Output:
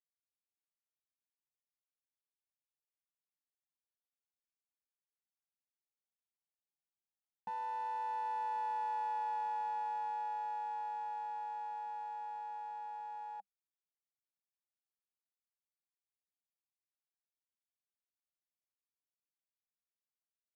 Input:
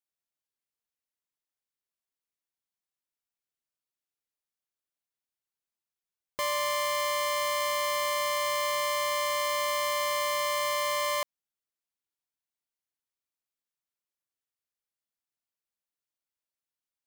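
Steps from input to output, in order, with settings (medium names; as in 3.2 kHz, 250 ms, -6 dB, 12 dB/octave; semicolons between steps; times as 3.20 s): Doppler pass-by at 7.14 s, 11 m/s, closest 14 m; two resonant band-passes 480 Hz, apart 2 oct; tape speed -17%; trim +1 dB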